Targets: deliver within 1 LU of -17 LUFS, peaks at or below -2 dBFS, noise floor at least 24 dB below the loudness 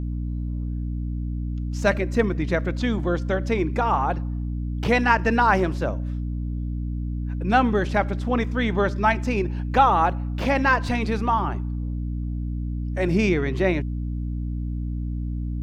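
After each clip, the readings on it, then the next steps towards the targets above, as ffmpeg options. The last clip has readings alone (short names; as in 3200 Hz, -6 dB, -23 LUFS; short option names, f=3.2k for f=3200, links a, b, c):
hum 60 Hz; harmonics up to 300 Hz; hum level -25 dBFS; loudness -24.0 LUFS; peak -4.0 dBFS; loudness target -17.0 LUFS
-> -af "bandreject=f=60:t=h:w=6,bandreject=f=120:t=h:w=6,bandreject=f=180:t=h:w=6,bandreject=f=240:t=h:w=6,bandreject=f=300:t=h:w=6"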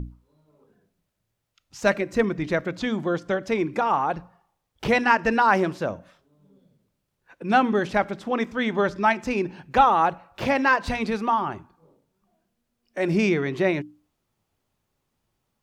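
hum none; loudness -23.5 LUFS; peak -4.5 dBFS; loudness target -17.0 LUFS
-> -af "volume=6.5dB,alimiter=limit=-2dB:level=0:latency=1"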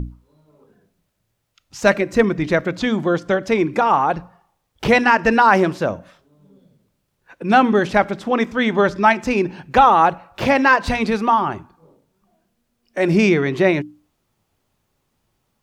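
loudness -17.0 LUFS; peak -2.0 dBFS; noise floor -71 dBFS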